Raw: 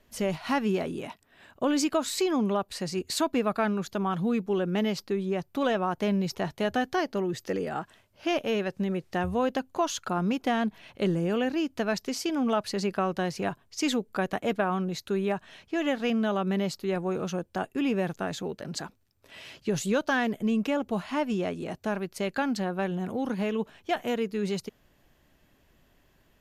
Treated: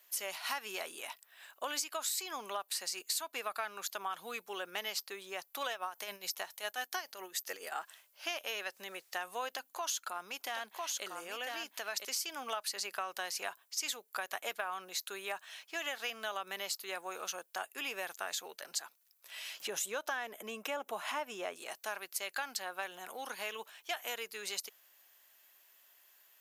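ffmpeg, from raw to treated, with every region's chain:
-filter_complex "[0:a]asettb=1/sr,asplit=3[a][b][c];[a]atrim=end=5.714[d];[b]atrim=start=5.71:end=7.72,asetpts=PTS-STARTPTS,afade=t=in:d=0.004:c=qsin,afade=t=out:st=2.006:d=0.004:c=qsin,highshelf=f=7.2k:g=6,tremolo=f=7.2:d=0.68[e];[c]atrim=start=7.716[f];[d][e]acrossfade=d=0.004:c1=hsin:c2=qsin[g];[g][f]acrossfade=d=0.004:c1=qsin:c2=hsin,asettb=1/sr,asplit=3[h][i][j];[h]atrim=end=9.484[k];[i]atrim=start=9.48:end=12.05,asetpts=PTS-STARTPTS,afade=t=in:d=0.004:c=qsin,afade=t=out:st=2.566:d=0.004:c=qsin,aecho=1:1:999:0.473,atrim=end_sample=113337,aeval=exprs='val(0)+0.00126*(sin(2*PI*60*n/s)+sin(2*PI*2*60*n/s)/2+sin(2*PI*3*60*n/s)/3+sin(2*PI*4*60*n/s)/4+sin(2*PI*5*60*n/s)/5)':c=same,acompressor=threshold=-28dB:ratio=2.5:attack=3.2:release=140:knee=1:detection=peak[l];[j]atrim=start=12.046[m];[k][l]acrossfade=d=0.004:c1=hsin:c2=qsin[n];[n][m]acrossfade=d=0.004:c1=qsin:c2=hsin,asettb=1/sr,asplit=3[o][p][q];[o]atrim=end=19.604[r];[p]atrim=start=19.6:end=21.56,asetpts=PTS-STARTPTS,afade=t=in:d=0.004:c=qsin,afade=t=out:st=1.956:d=0.004:c=qsin,tiltshelf=f=1.4k:g=5.5,bandreject=f=4.5k:w=6.1,acompressor=mode=upward:threshold=-24dB:ratio=2.5:attack=3.2:release=140:knee=2.83:detection=peak[s];[q]atrim=start=21.556[t];[r][s]acrossfade=d=0.004:c1=hsin:c2=qsin[u];[u][t]acrossfade=d=0.004:c1=qsin:c2=hsin,highpass=880,aemphasis=mode=production:type=bsi,acompressor=threshold=-32dB:ratio=6,volume=-1.5dB"

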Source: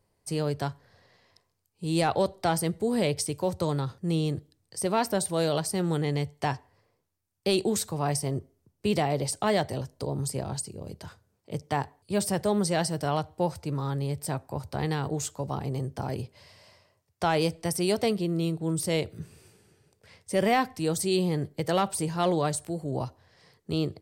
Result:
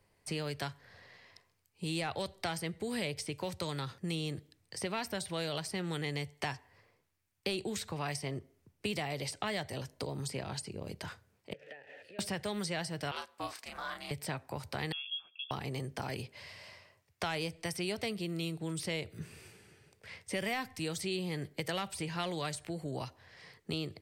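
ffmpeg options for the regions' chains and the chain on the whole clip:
-filter_complex "[0:a]asettb=1/sr,asplit=3[a][b][c];[a]atrim=end=11.534[d];[b]atrim=start=11.53:end=12.19,asetpts=PTS-STARTPTS,afade=t=in:d=0.004:c=qsin,afade=t=out:st=0.656:d=0.004:c=qsin,aeval=exprs='val(0)+0.5*0.0133*sgn(val(0))':c=same,acompressor=threshold=-34dB:ratio=12:attack=3.2:release=140:knee=1:detection=peak,asplit=3[e][f][g];[e]bandpass=f=530:t=q:w=8,volume=0dB[h];[f]bandpass=f=1.84k:t=q:w=8,volume=-6dB[i];[g]bandpass=f=2.48k:t=q:w=8,volume=-9dB[j];[h][i][j]amix=inputs=3:normalize=0[k];[c]atrim=start=12.186[l];[d][k]acrossfade=d=0.004:c1=hsin:c2=qsin[m];[m][l]acrossfade=d=0.004:c1=qsin:c2=hsin,asettb=1/sr,asplit=3[n][o][p];[n]atrim=end=13.114[q];[o]atrim=start=13.11:end=14.11,asetpts=PTS-STARTPTS,afade=t=in:d=0.004:c=qsin,afade=t=out:st=0.996:d=0.004:c=qsin,highpass=880,asplit=2[r][s];[s]adelay=34,volume=-4.5dB[t];[r][t]amix=inputs=2:normalize=0,atrim=end_sample=44100,aeval=exprs='val(0)*sin(2*PI*230*n/s)':c=same[u];[p]atrim=start=14.106[v];[q][u]acrossfade=d=0.004:c1=hsin:c2=qsin[w];[w][v]acrossfade=d=0.004:c1=qsin:c2=hsin,asettb=1/sr,asplit=3[x][y][z];[x]atrim=end=14.924[aa];[y]atrim=start=14.92:end=15.51,asetpts=PTS-STARTPTS,afade=t=in:d=0.004:c=qsin,afade=t=out:st=0.586:d=0.004:c=qsin,asplit=3[ab][ac][ad];[ab]bandpass=f=300:t=q:w=8,volume=0dB[ae];[ac]bandpass=f=870:t=q:w=8,volume=-6dB[af];[ad]bandpass=f=2.24k:t=q:w=8,volume=-9dB[ag];[ae][af][ag]amix=inputs=3:normalize=0,lowpass=f=3.1k:t=q:w=0.5098,lowpass=f=3.1k:t=q:w=0.6013,lowpass=f=3.1k:t=q:w=0.9,lowpass=f=3.1k:t=q:w=2.563,afreqshift=-3600[ah];[z]atrim=start=15.506[ai];[aa][ah]acrossfade=d=0.004:c1=hsin:c2=qsin[aj];[aj][ai]acrossfade=d=0.004:c1=qsin:c2=hsin,equalizer=f=2.2k:w=1:g=8.5,acrossover=split=140|1800|4800[ak][al][am][an];[ak]acompressor=threshold=-49dB:ratio=4[ao];[al]acompressor=threshold=-38dB:ratio=4[ap];[am]acompressor=threshold=-42dB:ratio=4[aq];[an]acompressor=threshold=-47dB:ratio=4[ar];[ao][ap][aq][ar]amix=inputs=4:normalize=0"

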